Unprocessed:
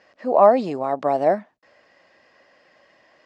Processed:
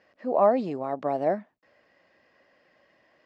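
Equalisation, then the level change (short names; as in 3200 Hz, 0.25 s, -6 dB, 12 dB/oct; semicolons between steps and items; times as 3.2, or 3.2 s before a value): bell 870 Hz -4.5 dB 1.9 oct; high shelf 4000 Hz -11.5 dB; -3.0 dB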